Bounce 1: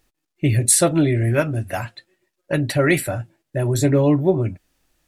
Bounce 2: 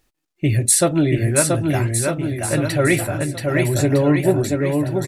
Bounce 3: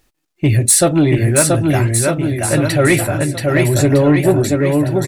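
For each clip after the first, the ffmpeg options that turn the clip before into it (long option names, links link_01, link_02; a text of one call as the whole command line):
ffmpeg -i in.wav -af "aecho=1:1:680|1258|1749|2167|2522:0.631|0.398|0.251|0.158|0.1" out.wav
ffmpeg -i in.wav -af "acontrast=70,volume=-1dB" out.wav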